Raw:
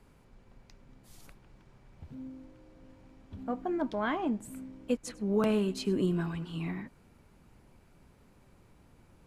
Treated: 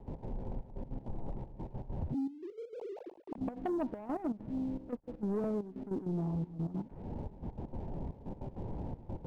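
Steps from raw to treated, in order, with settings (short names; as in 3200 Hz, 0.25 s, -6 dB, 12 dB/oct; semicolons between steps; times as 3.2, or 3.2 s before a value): 2.14–3.38 sine-wave speech; Chebyshev low-pass 910 Hz, order 5; compressor 5:1, threshold -55 dBFS, peak gain reduction 26.5 dB; sample leveller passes 2; step gate ".x.xxxxx..x" 198 bpm -12 dB; gain +14.5 dB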